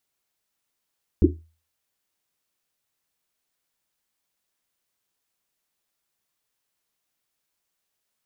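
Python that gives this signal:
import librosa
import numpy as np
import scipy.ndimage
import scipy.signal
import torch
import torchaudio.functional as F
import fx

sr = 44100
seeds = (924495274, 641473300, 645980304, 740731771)

y = fx.risset_drum(sr, seeds[0], length_s=1.1, hz=81.0, decay_s=0.37, noise_hz=320.0, noise_width_hz=130.0, noise_pct=55)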